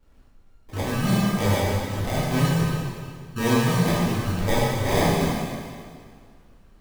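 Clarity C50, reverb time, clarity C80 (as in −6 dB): −2.5 dB, 2.0 s, −0.5 dB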